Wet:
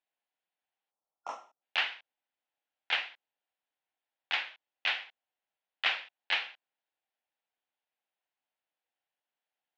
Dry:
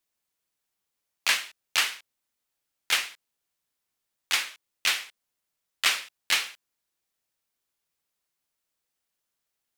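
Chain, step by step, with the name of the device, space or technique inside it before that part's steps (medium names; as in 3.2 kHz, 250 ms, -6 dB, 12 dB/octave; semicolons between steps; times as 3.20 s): phone earpiece (cabinet simulation 360–3200 Hz, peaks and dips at 400 Hz -6 dB, 770 Hz +6 dB, 1.2 kHz -7 dB, 2.2 kHz -3 dB); time-frequency box 0.91–1.62 s, 1.4–5.3 kHz -27 dB; trim -2 dB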